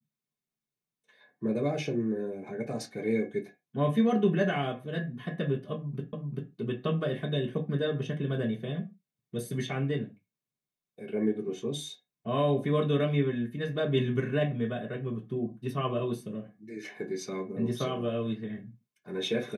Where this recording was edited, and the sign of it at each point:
0:06.13: the same again, the last 0.39 s

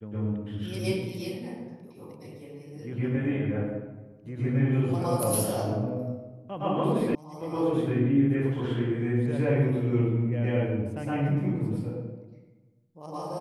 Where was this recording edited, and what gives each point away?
0:07.15: cut off before it has died away

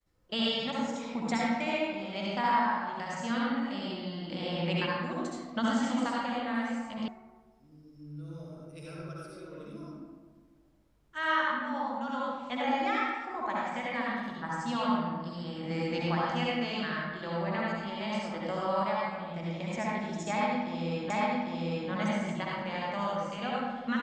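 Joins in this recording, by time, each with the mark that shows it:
0:07.08: cut off before it has died away
0:21.10: the same again, the last 0.8 s

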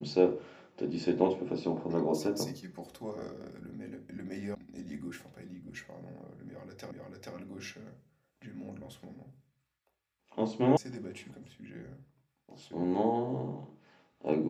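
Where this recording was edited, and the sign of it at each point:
0:04.55: cut off before it has died away
0:06.91: the same again, the last 0.44 s
0:10.77: cut off before it has died away

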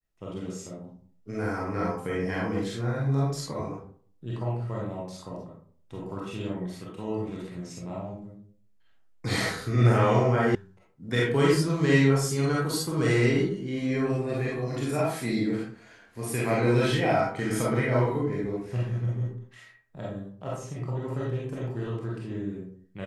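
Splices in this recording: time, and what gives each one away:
0:10.55: cut off before it has died away

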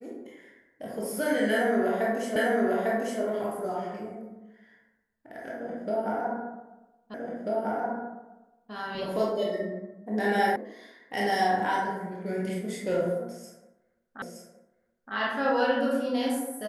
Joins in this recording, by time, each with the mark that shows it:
0:02.36: the same again, the last 0.85 s
0:07.14: the same again, the last 1.59 s
0:10.56: cut off before it has died away
0:14.22: the same again, the last 0.92 s

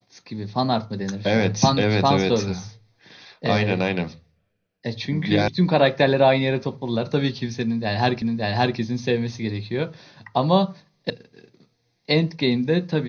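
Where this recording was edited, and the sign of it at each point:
0:05.48: cut off before it has died away
0:08.22: the same again, the last 0.57 s
0:11.10: cut off before it has died away

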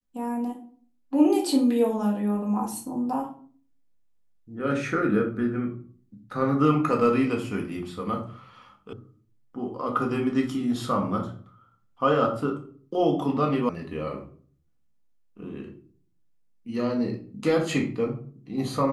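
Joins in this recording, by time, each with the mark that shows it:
0:08.93: cut off before it has died away
0:13.69: cut off before it has died away

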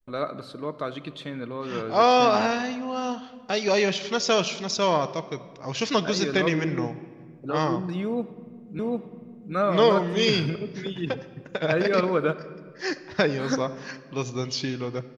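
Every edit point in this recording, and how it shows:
0:08.79: the same again, the last 0.75 s

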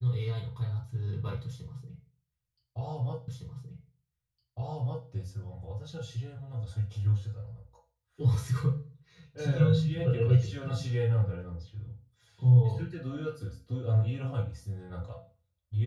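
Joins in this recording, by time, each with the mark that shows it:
0:03.28: the same again, the last 1.81 s

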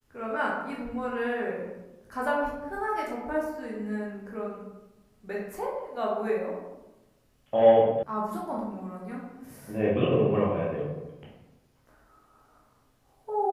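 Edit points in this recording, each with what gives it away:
0:08.03: cut off before it has died away

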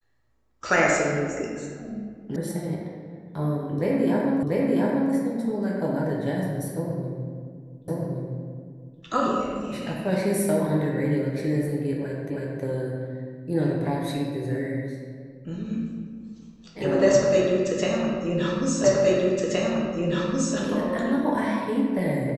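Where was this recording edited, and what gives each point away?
0:02.36: cut off before it has died away
0:04.43: the same again, the last 0.69 s
0:07.88: the same again, the last 1.12 s
0:12.30: the same again, the last 0.32 s
0:18.84: the same again, the last 1.72 s

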